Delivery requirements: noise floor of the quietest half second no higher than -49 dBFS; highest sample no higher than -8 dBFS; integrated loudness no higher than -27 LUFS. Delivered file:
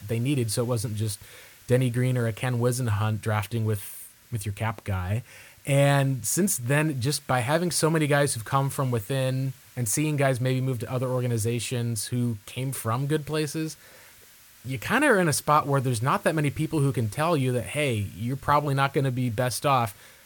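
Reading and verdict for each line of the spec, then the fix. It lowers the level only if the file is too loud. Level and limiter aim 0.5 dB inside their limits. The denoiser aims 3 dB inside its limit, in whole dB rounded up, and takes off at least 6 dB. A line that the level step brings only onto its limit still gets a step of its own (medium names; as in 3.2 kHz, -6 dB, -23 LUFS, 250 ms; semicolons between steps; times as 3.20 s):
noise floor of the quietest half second -52 dBFS: pass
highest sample -7.0 dBFS: fail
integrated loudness -25.5 LUFS: fail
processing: trim -2 dB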